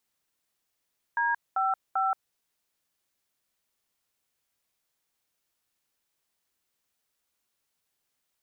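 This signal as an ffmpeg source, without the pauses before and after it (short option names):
-f lavfi -i "aevalsrc='0.0501*clip(min(mod(t,0.392),0.177-mod(t,0.392))/0.002,0,1)*(eq(floor(t/0.392),0)*(sin(2*PI*941*mod(t,0.392))+sin(2*PI*1633*mod(t,0.392)))+eq(floor(t/0.392),1)*(sin(2*PI*770*mod(t,0.392))+sin(2*PI*1336*mod(t,0.392)))+eq(floor(t/0.392),2)*(sin(2*PI*770*mod(t,0.392))+sin(2*PI*1336*mod(t,0.392))))':d=1.176:s=44100"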